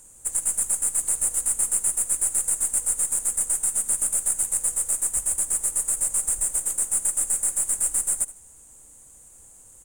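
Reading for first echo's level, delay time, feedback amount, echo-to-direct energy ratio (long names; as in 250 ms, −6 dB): −17.0 dB, 75 ms, 26%, −16.5 dB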